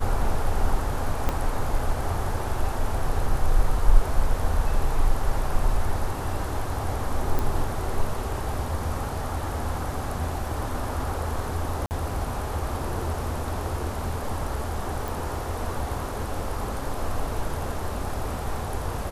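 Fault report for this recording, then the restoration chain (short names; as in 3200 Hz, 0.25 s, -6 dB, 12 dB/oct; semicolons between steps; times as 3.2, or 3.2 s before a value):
1.29 pop -11 dBFS
7.39 pop
11.86–11.91 gap 49 ms
15.08 pop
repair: de-click; interpolate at 11.86, 49 ms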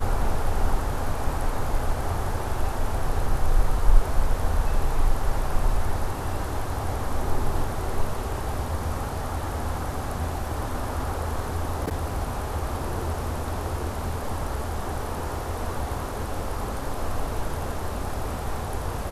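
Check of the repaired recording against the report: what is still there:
1.29 pop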